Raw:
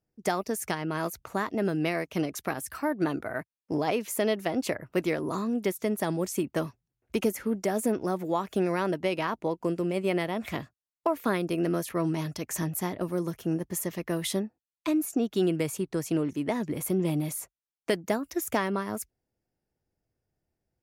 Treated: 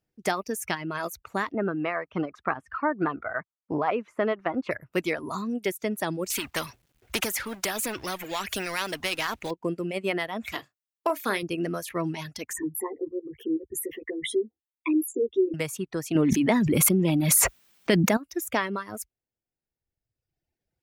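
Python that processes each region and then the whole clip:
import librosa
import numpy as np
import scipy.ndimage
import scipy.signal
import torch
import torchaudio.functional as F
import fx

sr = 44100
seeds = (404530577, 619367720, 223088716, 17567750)

y = fx.chain(x, sr, fx.lowpass(hz=1600.0, slope=12),
    fx.peak_eq(hz=1200.0, db=9.0, octaves=0.85), at=(1.52, 4.71))
y = fx.chain(y, sr, fx.law_mismatch(coded='mu'),
    fx.spectral_comp(ratio=2.0), at=(6.3, 9.51))
y = fx.chain(y, sr, fx.bass_treble(bass_db=-9, treble_db=7),
    fx.doubler(ms=35.0, db=-10.5), at=(10.52, 11.43))
y = fx.chain(y, sr, fx.envelope_sharpen(power=3.0),
    fx.fixed_phaser(hz=920.0, stages=8),
    fx.doubler(ms=13.0, db=-2.5), at=(12.53, 15.54))
y = fx.chain(y, sr, fx.peak_eq(hz=210.0, db=7.0, octaves=0.91),
    fx.env_flatten(amount_pct=100), at=(16.15, 18.17))
y = fx.dereverb_blind(y, sr, rt60_s=1.5)
y = fx.peak_eq(y, sr, hz=2500.0, db=5.5, octaves=1.9)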